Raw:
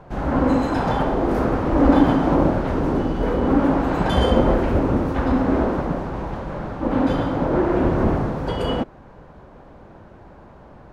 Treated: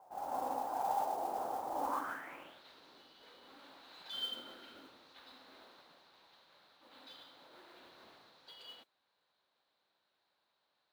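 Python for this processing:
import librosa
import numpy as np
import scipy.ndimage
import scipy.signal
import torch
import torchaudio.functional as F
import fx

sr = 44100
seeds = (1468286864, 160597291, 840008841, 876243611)

y = fx.low_shelf(x, sr, hz=230.0, db=-4.5)
y = fx.small_body(y, sr, hz=(260.0, 1400.0, 3100.0), ring_ms=20, db=10, at=(4.13, 4.89))
y = fx.filter_sweep_bandpass(y, sr, from_hz=790.0, to_hz=4000.0, start_s=1.79, end_s=2.62, q=6.2)
y = fx.mod_noise(y, sr, seeds[0], snr_db=20)
y = F.gain(torch.from_numpy(y), -6.0).numpy()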